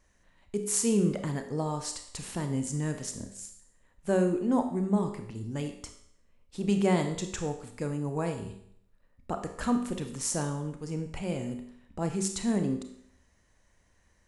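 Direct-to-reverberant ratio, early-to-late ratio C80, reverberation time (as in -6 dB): 6.0 dB, 11.0 dB, 0.65 s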